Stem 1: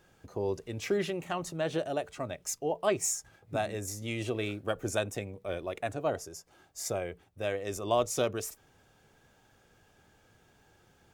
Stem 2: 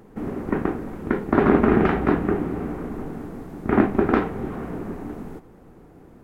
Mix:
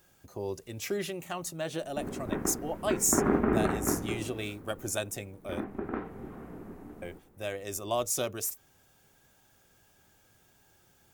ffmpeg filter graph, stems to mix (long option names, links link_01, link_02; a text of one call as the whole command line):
ffmpeg -i stem1.wav -i stem2.wav -filter_complex "[0:a]highshelf=frequency=4700:gain=6.5,bandreject=frequency=460:width=12,volume=-3dB,asplit=3[link_01][link_02][link_03];[link_01]atrim=end=5.64,asetpts=PTS-STARTPTS,afade=type=out:start_time=5.636:duration=0.004:curve=hsin[link_04];[link_02]atrim=start=5.64:end=7.02,asetpts=PTS-STARTPTS,volume=0[link_05];[link_03]atrim=start=7.02,asetpts=PTS-STARTPTS,afade=type=in:duration=0.004:curve=hsin[link_06];[link_04][link_05][link_06]concat=n=3:v=0:a=1[link_07];[1:a]acrossover=split=2600[link_08][link_09];[link_09]acompressor=threshold=-54dB:ratio=4:attack=1:release=60[link_10];[link_08][link_10]amix=inputs=2:normalize=0,adelay=1800,volume=-2.5dB,afade=type=out:start_time=3.73:duration=0.76:silence=0.281838,afade=type=in:start_time=5.47:duration=0.79:silence=0.473151[link_11];[link_07][link_11]amix=inputs=2:normalize=0,highshelf=frequency=11000:gain=12" out.wav